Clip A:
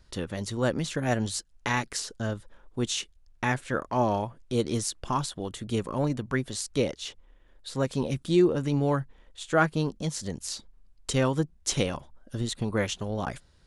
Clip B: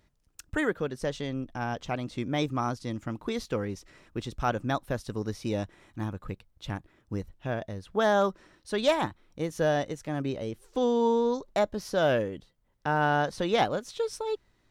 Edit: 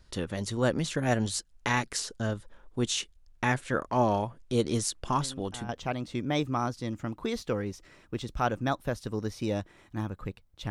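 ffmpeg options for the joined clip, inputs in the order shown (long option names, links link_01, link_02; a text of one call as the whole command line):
ffmpeg -i cue0.wav -i cue1.wav -filter_complex "[1:a]asplit=2[link_01][link_02];[0:a]apad=whole_dur=10.7,atrim=end=10.7,atrim=end=5.692[link_03];[link_02]atrim=start=1.718:end=6.73[link_04];[link_01]atrim=start=1.24:end=1.72,asetpts=PTS-STARTPTS,volume=-12dB,afade=type=in:duration=0.004:curve=hsin,afade=type=out:start_time=0.476:duration=0.004:curve=hsin,adelay=229761S[link_05];[link_03][link_04]acrossfade=duration=0.004:curve1=hsin:curve2=hsin[link_06];[link_06][link_05]amix=inputs=2:normalize=0" out.wav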